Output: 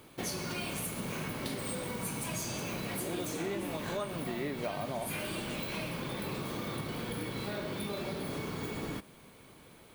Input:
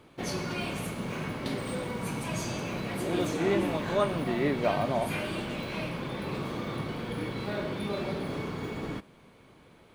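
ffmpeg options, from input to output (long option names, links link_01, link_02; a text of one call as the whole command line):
ffmpeg -i in.wav -af "aemphasis=mode=production:type=50fm,acompressor=threshold=-34dB:ratio=4" out.wav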